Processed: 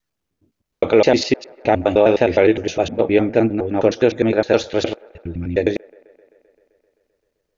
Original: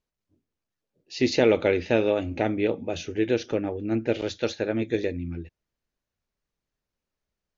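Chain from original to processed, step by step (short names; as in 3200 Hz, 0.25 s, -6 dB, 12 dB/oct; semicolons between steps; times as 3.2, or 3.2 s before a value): slices in reverse order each 0.103 s, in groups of 8; dynamic EQ 790 Hz, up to +8 dB, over -37 dBFS, Q 0.94; limiter -10.5 dBFS, peak gain reduction 7 dB; on a send: band-limited delay 0.13 s, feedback 75%, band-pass 910 Hz, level -24 dB; on the sum: gain +7.5 dB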